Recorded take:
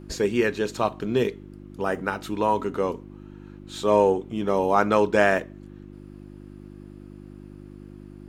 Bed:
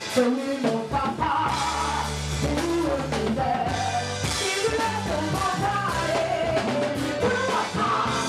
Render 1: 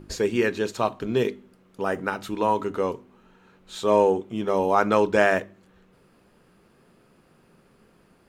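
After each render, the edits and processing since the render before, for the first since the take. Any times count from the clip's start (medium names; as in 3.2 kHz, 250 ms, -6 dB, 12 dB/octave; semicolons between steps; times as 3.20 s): de-hum 50 Hz, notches 7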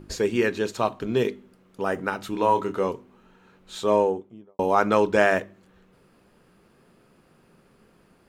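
2.31–2.88 s: doubling 26 ms -7.5 dB; 3.77–4.59 s: studio fade out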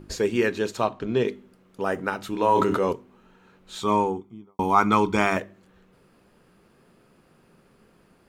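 0.85–1.28 s: distance through air 68 m; 2.52–2.93 s: decay stretcher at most 26 dB/s; 3.81–5.37 s: comb 0.9 ms, depth 77%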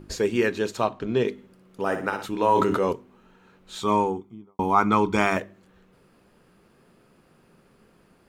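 1.32–2.26 s: flutter echo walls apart 10.1 m, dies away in 0.43 s; 4.35–5.12 s: treble shelf 2.5 kHz -5.5 dB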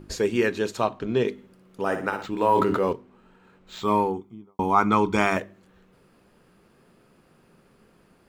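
2.11–4.14 s: decimation joined by straight lines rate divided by 4×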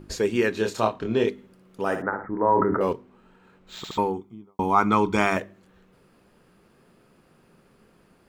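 0.55–1.29 s: doubling 27 ms -4 dB; 2.02–2.81 s: steep low-pass 2 kHz 96 dB/octave; 3.77 s: stutter in place 0.07 s, 3 plays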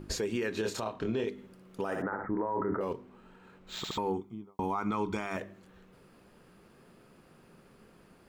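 compression 5:1, threshold -25 dBFS, peak gain reduction 10.5 dB; peak limiter -23 dBFS, peak gain reduction 10 dB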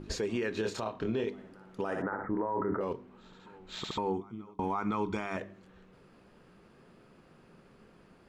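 distance through air 54 m; reverse echo 513 ms -23 dB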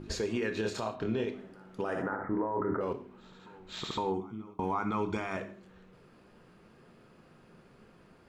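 gated-style reverb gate 180 ms falling, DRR 8 dB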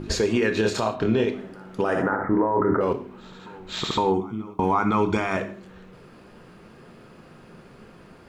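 trim +10.5 dB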